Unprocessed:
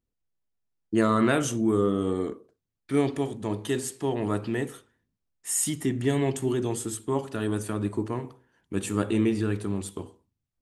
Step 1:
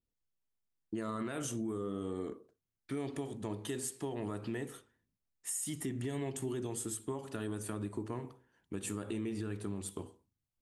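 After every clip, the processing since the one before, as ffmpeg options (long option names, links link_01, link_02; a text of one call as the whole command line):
ffmpeg -i in.wav -af "adynamicequalizer=threshold=0.00398:dfrequency=9900:dqfactor=1.1:tfrequency=9900:tqfactor=1.1:attack=5:release=100:ratio=0.375:range=2.5:mode=boostabove:tftype=bell,alimiter=limit=-19.5dB:level=0:latency=1:release=124,acompressor=threshold=-30dB:ratio=2.5,volume=-5.5dB" out.wav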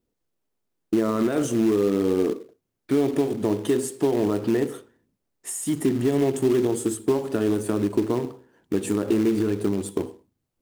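ffmpeg -i in.wav -filter_complex "[0:a]equalizer=frequency=380:width_type=o:width=2.4:gain=12.5,asplit=2[link_01][link_02];[link_02]acrusher=bits=2:mode=log:mix=0:aa=0.000001,volume=-6.5dB[link_03];[link_01][link_03]amix=inputs=2:normalize=0,volume=2.5dB" out.wav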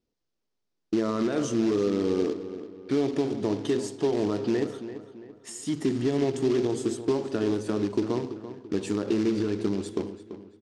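ffmpeg -i in.wav -filter_complex "[0:a]lowpass=frequency=5300:width_type=q:width=1.9,asplit=2[link_01][link_02];[link_02]adelay=337,lowpass=frequency=3500:poles=1,volume=-12dB,asplit=2[link_03][link_04];[link_04]adelay=337,lowpass=frequency=3500:poles=1,volume=0.42,asplit=2[link_05][link_06];[link_06]adelay=337,lowpass=frequency=3500:poles=1,volume=0.42,asplit=2[link_07][link_08];[link_08]adelay=337,lowpass=frequency=3500:poles=1,volume=0.42[link_09];[link_01][link_03][link_05][link_07][link_09]amix=inputs=5:normalize=0,volume=-4dB" out.wav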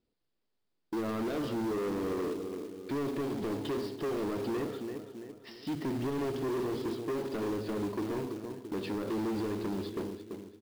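ffmpeg -i in.wav -af "aresample=11025,aresample=44100,asoftclip=type=tanh:threshold=-31dB,acrusher=bits=4:mode=log:mix=0:aa=0.000001" out.wav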